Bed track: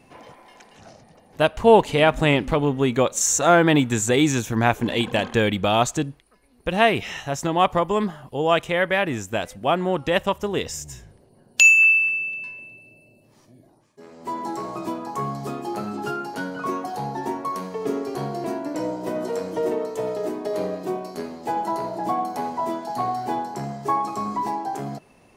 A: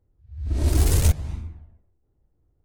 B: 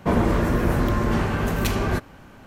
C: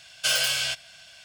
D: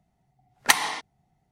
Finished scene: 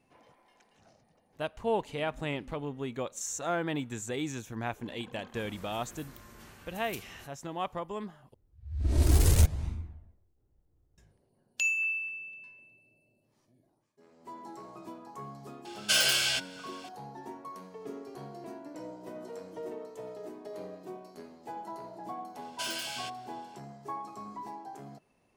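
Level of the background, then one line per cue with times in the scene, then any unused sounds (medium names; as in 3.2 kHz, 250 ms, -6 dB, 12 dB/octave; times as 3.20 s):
bed track -16 dB
5.28 s: add B -13 dB + pre-emphasis filter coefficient 0.9
8.34 s: replace with A -3.5 dB
15.65 s: add C -1.5 dB
22.35 s: add C -13 dB
not used: D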